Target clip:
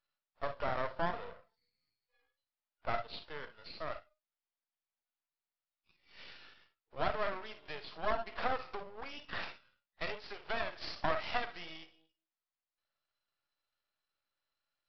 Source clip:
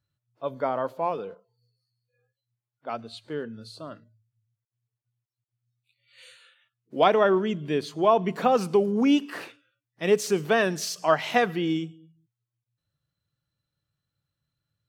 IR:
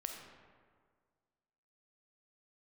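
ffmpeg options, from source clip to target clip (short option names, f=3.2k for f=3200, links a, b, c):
-filter_complex "[0:a]acompressor=threshold=-31dB:ratio=6,highpass=f=640:w=0.5412,highpass=f=640:w=1.3066,highshelf=f=3.1k:g=-9[a];[1:a]atrim=start_sample=2205,atrim=end_sample=3087[b];[a][b]afir=irnorm=-1:irlink=0,aresample=11025,aeval=exprs='max(val(0),0)':c=same,aresample=44100,volume=9.5dB"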